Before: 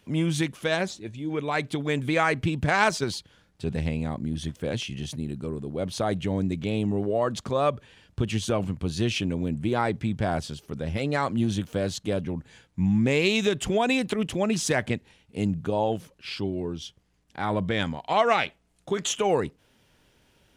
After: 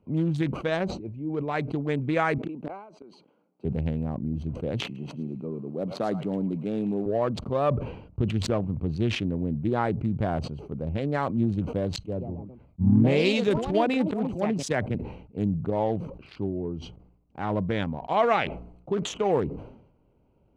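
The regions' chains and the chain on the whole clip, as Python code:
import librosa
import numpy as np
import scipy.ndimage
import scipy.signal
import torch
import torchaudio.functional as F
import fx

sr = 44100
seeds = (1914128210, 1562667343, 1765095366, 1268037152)

y = fx.chain(x, sr, fx.highpass(hz=230.0, slope=24),
    fx.gate_flip(shuts_db=-20.0, range_db=-27), at=(2.38, 3.65))
y = fx.chain(y, sr, fx.cvsd(bps=64000),
    fx.highpass(hz=150.0, slope=24),
    fx.echo_wet_highpass(ms=108, feedback_pct=31, hz=1500.0, wet_db=-3), at=(4.84, 7.06))
y = fx.chain(y, sr, fx.echo_pitch(ms=154, semitones=3, count=2, db_per_echo=-6.0),
    fx.band_widen(depth_pct=100), at=(11.96, 14.95))
y = fx.wiener(y, sr, points=25)
y = fx.lowpass(y, sr, hz=1800.0, slope=6)
y = fx.sustainer(y, sr, db_per_s=74.0)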